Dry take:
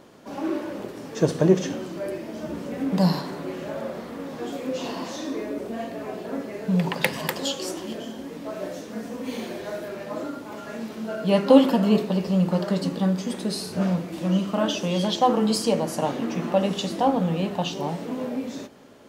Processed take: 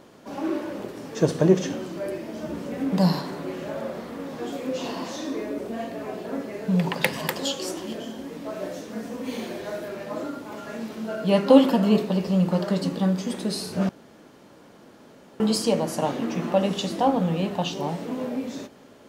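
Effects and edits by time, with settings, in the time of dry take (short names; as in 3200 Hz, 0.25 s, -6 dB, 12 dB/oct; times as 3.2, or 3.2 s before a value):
13.89–15.4 room tone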